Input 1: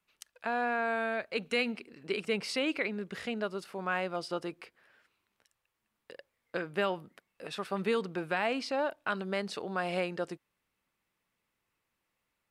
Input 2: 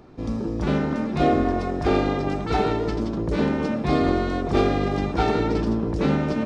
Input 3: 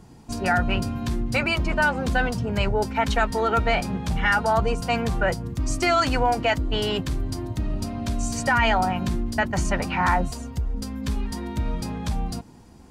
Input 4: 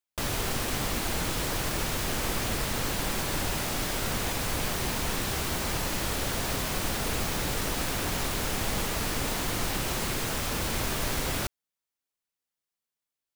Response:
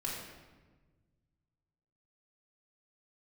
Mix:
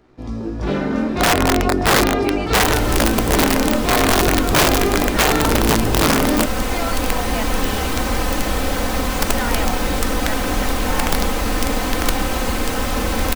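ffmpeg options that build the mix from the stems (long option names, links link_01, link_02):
-filter_complex "[0:a]volume=-18dB[link_01];[1:a]aeval=exprs='sgn(val(0))*max(abs(val(0))-0.00251,0)':channel_layout=same,flanger=delay=16:depth=7.5:speed=0.38,volume=1.5dB,asplit=2[link_02][link_03];[link_03]volume=-11.5dB[link_04];[2:a]adelay=900,volume=-16dB[link_05];[3:a]highshelf=frequency=2000:gain=-9,aecho=1:1:3.9:0.67,adelay=2450,volume=1.5dB[link_06];[4:a]atrim=start_sample=2205[link_07];[link_04][link_07]afir=irnorm=-1:irlink=0[link_08];[link_01][link_02][link_05][link_06][link_08]amix=inputs=5:normalize=0,equalizer=frequency=150:width=1.9:gain=-5,dynaudnorm=framelen=150:gausssize=11:maxgain=9.5dB,aeval=exprs='(mod(2.51*val(0)+1,2)-1)/2.51':channel_layout=same"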